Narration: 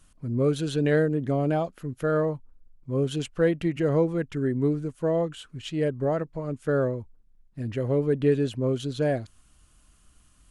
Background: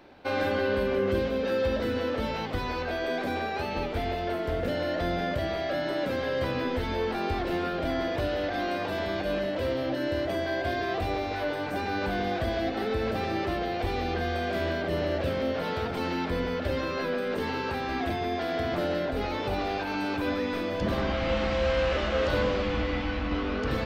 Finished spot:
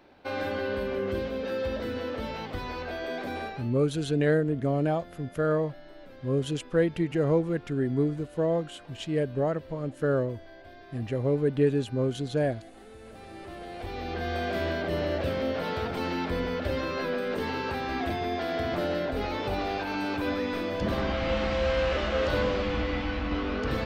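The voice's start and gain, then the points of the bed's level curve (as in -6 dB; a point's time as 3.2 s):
3.35 s, -1.5 dB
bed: 3.47 s -4 dB
3.74 s -20 dB
12.96 s -20 dB
14.38 s -0.5 dB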